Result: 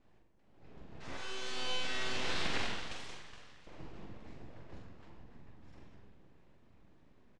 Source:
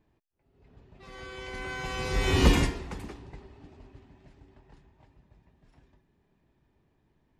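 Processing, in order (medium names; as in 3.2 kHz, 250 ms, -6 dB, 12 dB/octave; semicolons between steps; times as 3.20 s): saturation -18.5 dBFS, distortion -12 dB; 1.17–3.67 s: high-pass 740 Hz 24 dB/octave; low-pass that closes with the level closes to 1.9 kHz, closed at -32 dBFS; simulated room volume 1700 m³, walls mixed, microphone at 1.9 m; full-wave rectifier; low-pass 8.4 kHz 24 dB/octave; doubling 44 ms -5.5 dB; endings held to a fixed fall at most 150 dB/s; trim +1 dB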